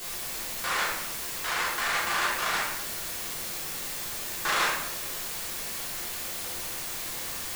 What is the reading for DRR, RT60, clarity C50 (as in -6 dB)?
-8.0 dB, 0.90 s, 1.0 dB